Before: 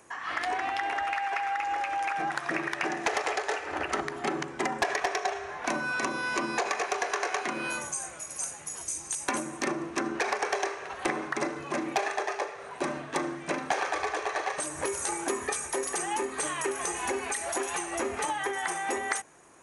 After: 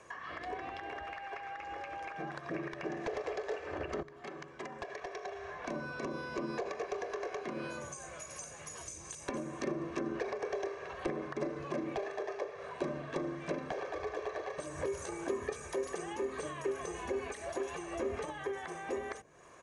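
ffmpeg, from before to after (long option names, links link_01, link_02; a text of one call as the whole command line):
ffmpeg -i in.wav -filter_complex "[0:a]asplit=2[link_01][link_02];[link_01]atrim=end=4.03,asetpts=PTS-STARTPTS,afade=type=out:start_time=4.026:duration=0.004:curve=hsin:silence=0.211349[link_03];[link_02]atrim=start=4.03,asetpts=PTS-STARTPTS,afade=type=in:duration=1.91:curve=qua:silence=0.211349[link_04];[link_03][link_04]concat=n=2:v=0:a=1,lowpass=5700,aecho=1:1:1.8:0.44,acrossover=split=490[link_05][link_06];[link_06]acompressor=threshold=-43dB:ratio=10[link_07];[link_05][link_07]amix=inputs=2:normalize=0" out.wav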